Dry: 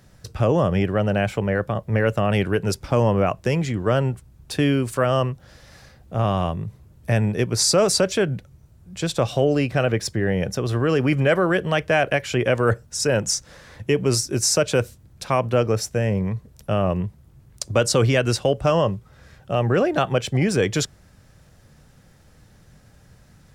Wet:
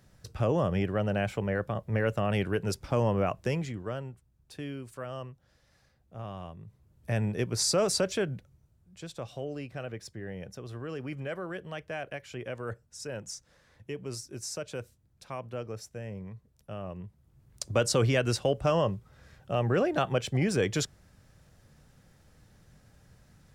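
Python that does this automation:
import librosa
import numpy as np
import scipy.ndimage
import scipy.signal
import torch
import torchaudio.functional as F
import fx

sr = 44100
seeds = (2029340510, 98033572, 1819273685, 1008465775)

y = fx.gain(x, sr, db=fx.line((3.5, -8.0), (4.09, -19.0), (6.56, -19.0), (7.21, -8.5), (8.16, -8.5), (9.07, -18.0), (16.95, -18.0), (17.63, -7.0)))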